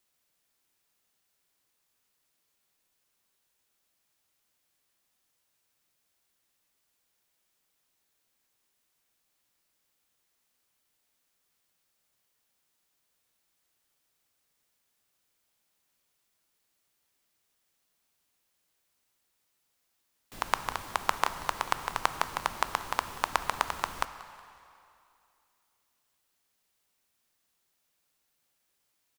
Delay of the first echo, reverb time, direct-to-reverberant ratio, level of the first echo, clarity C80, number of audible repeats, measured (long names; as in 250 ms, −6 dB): 184 ms, 2.6 s, 10.5 dB, −21.0 dB, 12.0 dB, 2